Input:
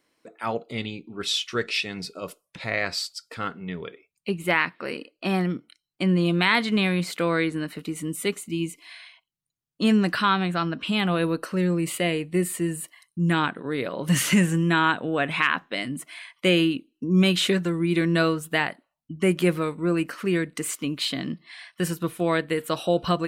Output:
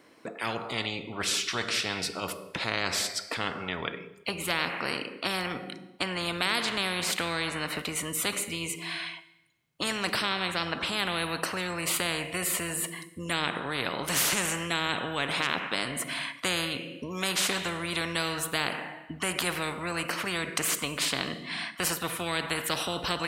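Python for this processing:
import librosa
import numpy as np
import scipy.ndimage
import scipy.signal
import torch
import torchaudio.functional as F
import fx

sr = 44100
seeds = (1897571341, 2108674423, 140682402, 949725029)

y = fx.highpass(x, sr, hz=99.0, slope=6)
y = fx.high_shelf(y, sr, hz=2600.0, db=-9.0)
y = fx.rev_schroeder(y, sr, rt60_s=0.89, comb_ms=32, drr_db=16.0)
y = fx.spectral_comp(y, sr, ratio=4.0)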